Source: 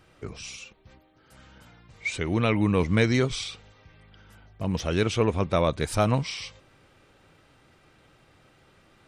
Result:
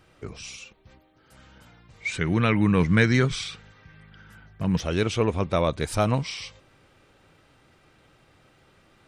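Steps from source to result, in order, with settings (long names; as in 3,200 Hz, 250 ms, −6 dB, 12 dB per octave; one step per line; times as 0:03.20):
0:02.09–0:04.80: graphic EQ with 15 bands 160 Hz +8 dB, 630 Hz −3 dB, 1,600 Hz +8 dB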